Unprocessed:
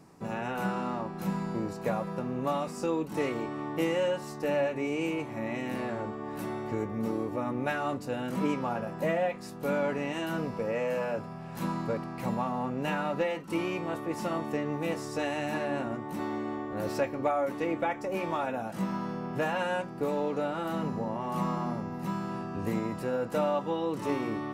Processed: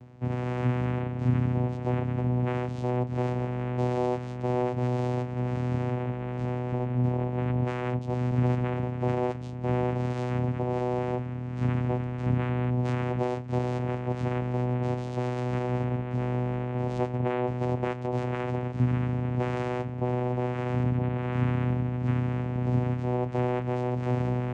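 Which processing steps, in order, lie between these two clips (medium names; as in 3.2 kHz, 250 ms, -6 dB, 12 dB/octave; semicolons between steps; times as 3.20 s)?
in parallel at +3 dB: peak limiter -25.5 dBFS, peak gain reduction 9.5 dB; on the sum: vocoder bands 4, saw 124 Hz; trim -1.5 dB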